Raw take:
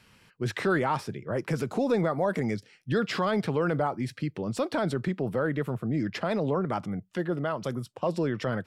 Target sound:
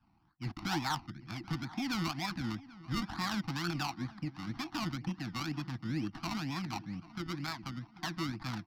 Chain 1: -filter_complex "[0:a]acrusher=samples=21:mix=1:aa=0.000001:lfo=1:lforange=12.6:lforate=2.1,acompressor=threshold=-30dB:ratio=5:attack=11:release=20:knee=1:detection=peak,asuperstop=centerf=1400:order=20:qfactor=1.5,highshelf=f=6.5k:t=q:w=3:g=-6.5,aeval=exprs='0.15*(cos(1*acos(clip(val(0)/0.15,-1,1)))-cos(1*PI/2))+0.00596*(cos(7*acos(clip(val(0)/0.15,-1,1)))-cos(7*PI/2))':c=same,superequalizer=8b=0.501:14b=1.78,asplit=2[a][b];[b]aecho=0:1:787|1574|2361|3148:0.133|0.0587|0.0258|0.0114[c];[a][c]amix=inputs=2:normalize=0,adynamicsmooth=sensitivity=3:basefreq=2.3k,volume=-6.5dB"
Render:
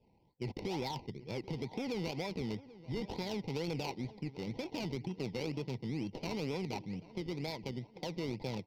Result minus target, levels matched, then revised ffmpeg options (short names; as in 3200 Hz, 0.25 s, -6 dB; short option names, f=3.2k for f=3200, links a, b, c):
500 Hz band +12.0 dB; compressor: peak gain reduction +7.5 dB
-filter_complex "[0:a]acrusher=samples=21:mix=1:aa=0.000001:lfo=1:lforange=12.6:lforate=2.1,asuperstop=centerf=480:order=20:qfactor=1.5,highshelf=f=6.5k:t=q:w=3:g=-6.5,aeval=exprs='0.15*(cos(1*acos(clip(val(0)/0.15,-1,1)))-cos(1*PI/2))+0.00596*(cos(7*acos(clip(val(0)/0.15,-1,1)))-cos(7*PI/2))':c=same,superequalizer=8b=0.501:14b=1.78,asplit=2[a][b];[b]aecho=0:1:787|1574|2361|3148:0.133|0.0587|0.0258|0.0114[c];[a][c]amix=inputs=2:normalize=0,adynamicsmooth=sensitivity=3:basefreq=2.3k,volume=-6.5dB"